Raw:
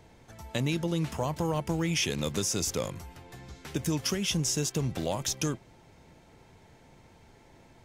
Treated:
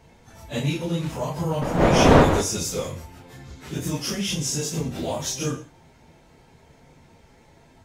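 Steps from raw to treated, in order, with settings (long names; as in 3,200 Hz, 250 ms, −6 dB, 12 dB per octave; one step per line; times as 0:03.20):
random phases in long frames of 100 ms
0:01.61–0:02.40: wind on the microphone 620 Hz −25 dBFS
reverb whose tail is shaped and stops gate 200 ms falling, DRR 8.5 dB
level +2.5 dB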